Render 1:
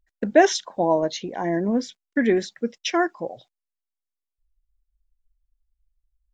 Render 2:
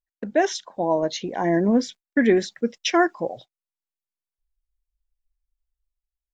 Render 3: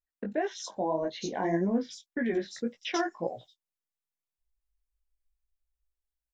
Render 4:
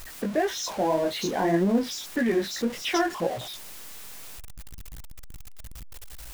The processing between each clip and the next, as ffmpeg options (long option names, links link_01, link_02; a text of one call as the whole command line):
ffmpeg -i in.wav -af "agate=range=-15dB:threshold=-45dB:ratio=16:detection=peak,dynaudnorm=framelen=120:gausssize=9:maxgain=13dB,volume=-5.5dB" out.wav
ffmpeg -i in.wav -filter_complex "[0:a]alimiter=limit=-17dB:level=0:latency=1:release=332,flanger=delay=16:depth=4.8:speed=1.8,acrossover=split=4000[link_01][link_02];[link_02]adelay=90[link_03];[link_01][link_03]amix=inputs=2:normalize=0" out.wav
ffmpeg -i in.wav -af "aeval=exprs='val(0)+0.5*0.015*sgn(val(0))':channel_layout=same,volume=4dB" out.wav